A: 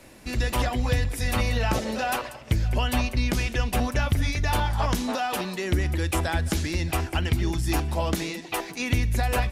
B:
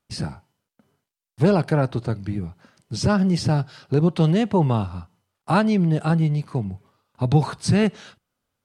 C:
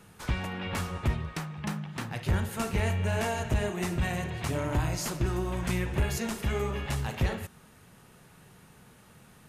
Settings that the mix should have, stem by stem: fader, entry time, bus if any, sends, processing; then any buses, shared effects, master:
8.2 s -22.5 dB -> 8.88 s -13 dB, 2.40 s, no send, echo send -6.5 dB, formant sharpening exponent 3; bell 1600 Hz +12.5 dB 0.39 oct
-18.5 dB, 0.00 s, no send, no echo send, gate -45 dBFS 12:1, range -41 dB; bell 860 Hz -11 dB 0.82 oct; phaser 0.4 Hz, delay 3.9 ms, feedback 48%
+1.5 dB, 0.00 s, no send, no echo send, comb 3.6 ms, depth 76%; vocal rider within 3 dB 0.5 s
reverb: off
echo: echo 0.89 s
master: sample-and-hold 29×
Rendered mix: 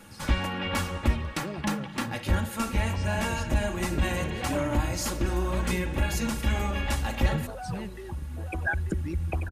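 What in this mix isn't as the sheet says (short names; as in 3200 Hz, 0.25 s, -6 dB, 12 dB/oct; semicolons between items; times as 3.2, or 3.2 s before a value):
stem A -22.5 dB -> -12.5 dB; master: missing sample-and-hold 29×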